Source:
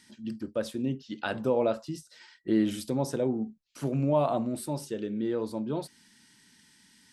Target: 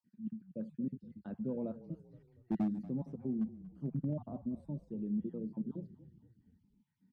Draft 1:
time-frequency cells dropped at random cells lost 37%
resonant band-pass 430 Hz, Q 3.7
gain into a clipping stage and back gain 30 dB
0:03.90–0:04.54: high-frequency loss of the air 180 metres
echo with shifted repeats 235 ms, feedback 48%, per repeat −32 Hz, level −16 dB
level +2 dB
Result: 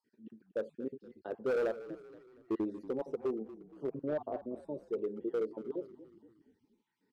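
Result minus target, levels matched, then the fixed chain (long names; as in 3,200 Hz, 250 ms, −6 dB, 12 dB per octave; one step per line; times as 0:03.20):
500 Hz band +10.5 dB
time-frequency cells dropped at random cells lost 37%
resonant band-pass 190 Hz, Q 3.7
gain into a clipping stage and back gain 30 dB
0:03.90–0:04.54: high-frequency loss of the air 180 metres
echo with shifted repeats 235 ms, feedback 48%, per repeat −32 Hz, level −16 dB
level +2 dB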